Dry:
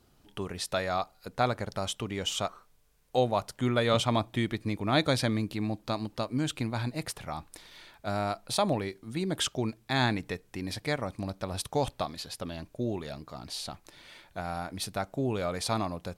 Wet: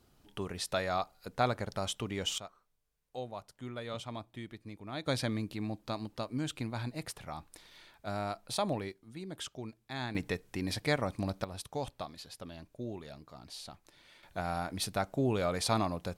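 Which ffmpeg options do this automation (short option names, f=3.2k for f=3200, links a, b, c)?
-af "asetnsamples=n=441:p=0,asendcmd='2.38 volume volume -15dB;5.07 volume volume -5.5dB;8.92 volume volume -12dB;10.15 volume volume 0.5dB;11.44 volume volume -8.5dB;14.23 volume volume 0dB',volume=-2.5dB"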